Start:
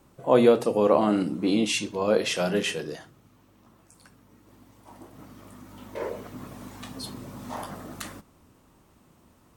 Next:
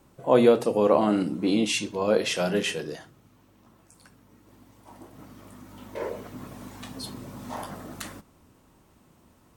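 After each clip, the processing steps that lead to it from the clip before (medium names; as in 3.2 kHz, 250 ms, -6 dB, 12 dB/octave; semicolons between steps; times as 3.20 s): band-stop 1.2 kHz, Q 28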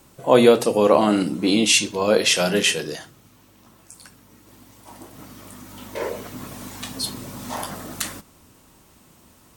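treble shelf 2.3 kHz +9.5 dB; trim +4 dB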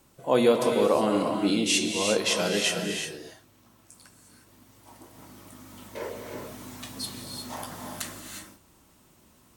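gated-style reverb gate 390 ms rising, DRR 3 dB; trim -8 dB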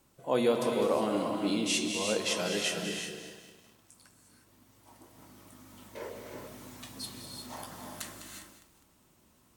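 bit-crushed delay 203 ms, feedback 55%, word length 8-bit, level -11 dB; trim -6 dB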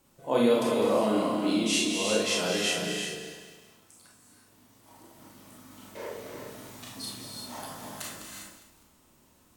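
Schroeder reverb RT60 0.37 s, combs from 26 ms, DRR -1 dB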